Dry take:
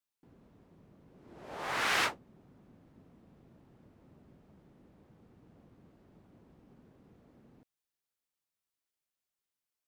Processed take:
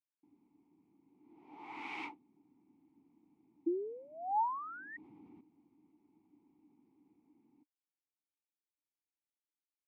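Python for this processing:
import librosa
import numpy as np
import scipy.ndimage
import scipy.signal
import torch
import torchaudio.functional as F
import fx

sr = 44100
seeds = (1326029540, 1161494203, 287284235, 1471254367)

y = fx.spec_paint(x, sr, seeds[0], shape='rise', start_s=3.66, length_s=1.31, low_hz=330.0, high_hz=1900.0, level_db=-24.0)
y = fx.vowel_filter(y, sr, vowel='u')
y = fx.env_flatten(y, sr, amount_pct=50, at=(4.62, 5.41))
y = y * 10.0 ** (1.0 / 20.0)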